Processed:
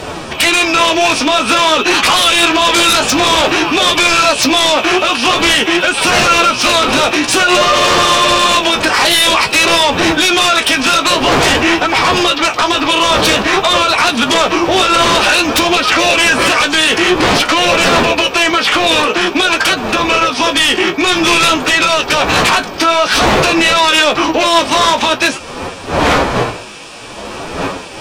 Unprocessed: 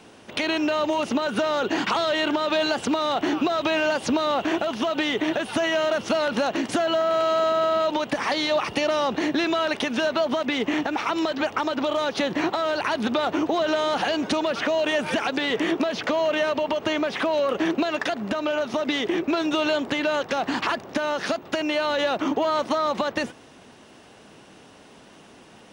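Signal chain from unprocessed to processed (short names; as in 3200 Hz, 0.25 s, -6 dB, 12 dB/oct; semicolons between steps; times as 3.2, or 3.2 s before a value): wind noise 610 Hz -30 dBFS; tilt shelf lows -8 dB; notch 1900 Hz, Q 7.8; formant-preserving pitch shift +3 st; sine folder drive 14 dB, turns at -5.5 dBFS; flange 0.55 Hz, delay 9.7 ms, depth 8 ms, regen +36%; speed mistake 48 kHz file played as 44.1 kHz; gain +2.5 dB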